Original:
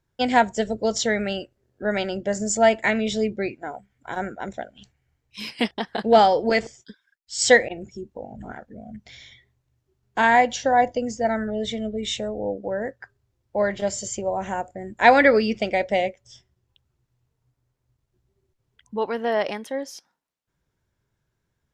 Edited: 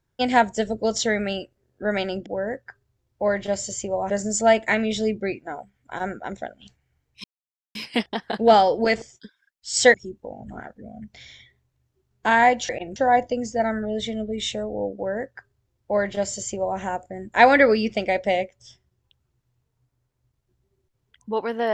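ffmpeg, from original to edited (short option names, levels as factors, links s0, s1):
-filter_complex "[0:a]asplit=7[s0][s1][s2][s3][s4][s5][s6];[s0]atrim=end=2.262[s7];[s1]atrim=start=12.598:end=14.442[s8];[s2]atrim=start=2.258:end=5.4,asetpts=PTS-STARTPTS,afade=t=out:st=3.138:d=0.004:c=hsin,apad=pad_dur=0.51[s9];[s3]atrim=start=5.4:end=7.592,asetpts=PTS-STARTPTS,afade=t=in:d=0.004:c=hsin[s10];[s4]atrim=start=7.858:end=10.612[s11];[s5]atrim=start=7.588:end=7.862[s12];[s6]atrim=start=10.608[s13];[s7][s8]acrossfade=d=0.004:c1=hsin:c2=hsin[s14];[s9][s10]concat=n=2:v=0:a=1[s15];[s14][s15]acrossfade=d=0.004:c1=hsin:c2=hsin[s16];[s16][s11]acrossfade=d=0.004:c1=hsin:c2=hsin[s17];[s17][s12]acrossfade=d=0.004:c1=hsin:c2=hsin[s18];[s18][s13]acrossfade=d=0.004:c1=hsin:c2=hsin"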